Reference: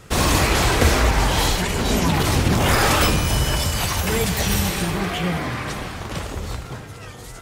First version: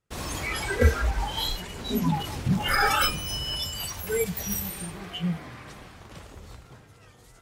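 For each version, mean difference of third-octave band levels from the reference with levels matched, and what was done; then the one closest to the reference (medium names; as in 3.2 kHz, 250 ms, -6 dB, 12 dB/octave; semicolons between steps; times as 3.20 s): 7.0 dB: spectral noise reduction 16 dB; short-mantissa float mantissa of 8-bit; gate with hold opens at -46 dBFS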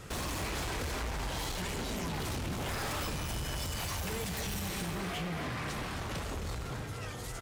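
4.0 dB: compression 3:1, threshold -28 dBFS, peak gain reduction 12.5 dB; saturation -30.5 dBFS, distortion -9 dB; on a send: delay 264 ms -11 dB; on the sum: trim -2.5 dB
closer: second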